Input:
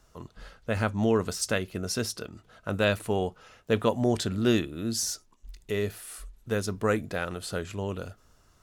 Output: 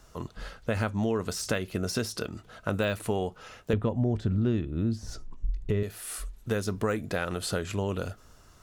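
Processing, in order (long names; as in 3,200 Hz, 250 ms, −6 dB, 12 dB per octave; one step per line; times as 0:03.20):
de-essing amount 70%
0:03.73–0:05.83: RIAA equalisation playback
downward compressor 4 to 1, threshold −32 dBFS, peak gain reduction 17 dB
level +6 dB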